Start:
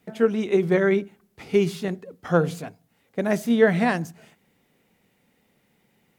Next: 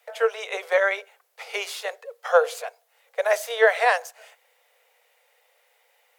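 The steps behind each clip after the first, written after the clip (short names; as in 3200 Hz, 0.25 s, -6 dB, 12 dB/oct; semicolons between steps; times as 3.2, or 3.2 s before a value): steep high-pass 470 Hz 96 dB/oct; gain +5 dB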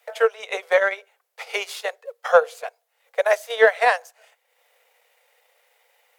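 transient shaper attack +3 dB, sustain -8 dB; in parallel at -10 dB: soft clip -10.5 dBFS, distortion -14 dB; on the sum: gain -1 dB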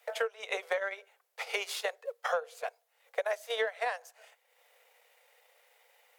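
compressor 12:1, threshold -26 dBFS, peak gain reduction 17.5 dB; gain -2.5 dB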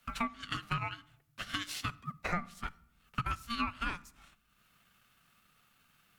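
ring modulator 700 Hz; shoebox room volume 2000 m³, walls furnished, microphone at 0.35 m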